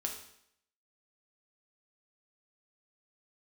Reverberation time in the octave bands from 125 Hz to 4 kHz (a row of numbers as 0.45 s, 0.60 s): 0.65 s, 0.70 s, 0.70 s, 0.70 s, 0.70 s, 0.70 s